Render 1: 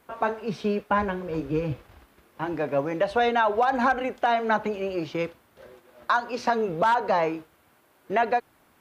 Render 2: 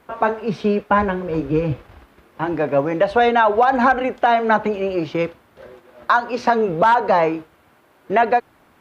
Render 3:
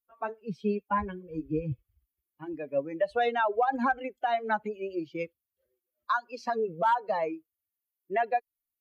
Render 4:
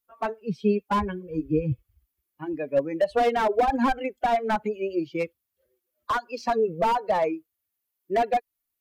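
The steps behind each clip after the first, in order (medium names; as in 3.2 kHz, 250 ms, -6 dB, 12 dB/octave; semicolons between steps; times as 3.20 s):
treble shelf 5 kHz -9.5 dB; trim +7.5 dB
expander on every frequency bin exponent 2; trim -8 dB
slew-rate limiter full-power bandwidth 42 Hz; trim +6.5 dB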